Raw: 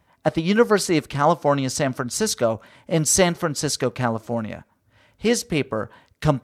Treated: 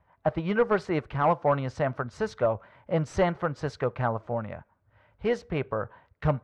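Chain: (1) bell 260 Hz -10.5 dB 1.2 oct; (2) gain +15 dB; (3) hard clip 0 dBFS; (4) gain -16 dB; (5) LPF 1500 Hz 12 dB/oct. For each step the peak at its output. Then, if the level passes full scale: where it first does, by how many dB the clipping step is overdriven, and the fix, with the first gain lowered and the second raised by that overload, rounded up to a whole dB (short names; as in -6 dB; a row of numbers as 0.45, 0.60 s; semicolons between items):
-6.0, +9.0, 0.0, -16.0, -15.5 dBFS; step 2, 9.0 dB; step 2 +6 dB, step 4 -7 dB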